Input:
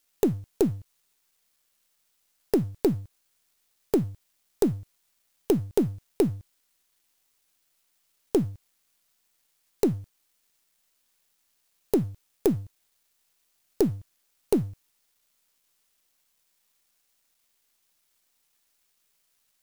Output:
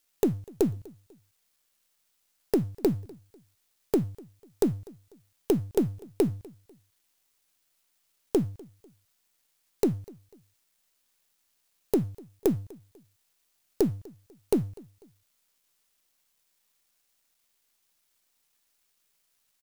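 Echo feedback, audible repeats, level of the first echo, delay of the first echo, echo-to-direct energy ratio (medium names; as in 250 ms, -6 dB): 35%, 2, -23.5 dB, 247 ms, -23.0 dB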